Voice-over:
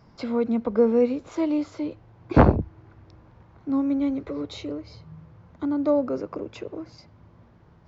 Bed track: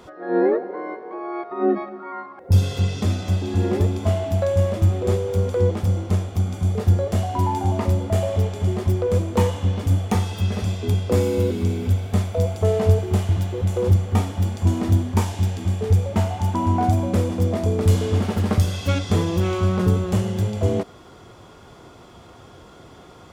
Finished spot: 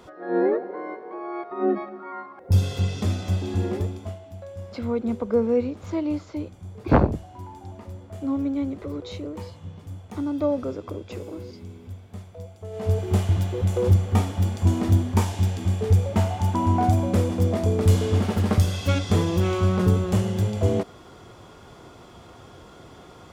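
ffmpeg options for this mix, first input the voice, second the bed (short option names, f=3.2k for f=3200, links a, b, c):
-filter_complex "[0:a]adelay=4550,volume=-2dB[a];[1:a]volume=14.5dB,afade=t=out:st=3.49:d=0.7:silence=0.16788,afade=t=in:st=12.7:d=0.45:silence=0.133352[b];[a][b]amix=inputs=2:normalize=0"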